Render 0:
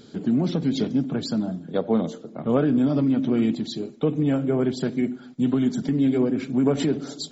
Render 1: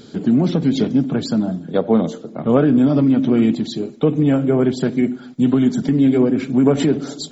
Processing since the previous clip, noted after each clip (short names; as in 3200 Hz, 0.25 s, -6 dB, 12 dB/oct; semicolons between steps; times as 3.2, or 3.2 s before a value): dynamic EQ 4800 Hz, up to -4 dB, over -46 dBFS, Q 1.3; gain +6.5 dB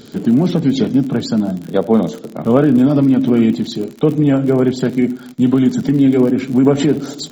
crackle 58/s -27 dBFS; gain +2.5 dB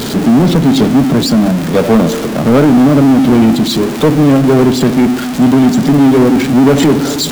zero-crossing step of -21 dBFS; sample leveller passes 2; gain -1 dB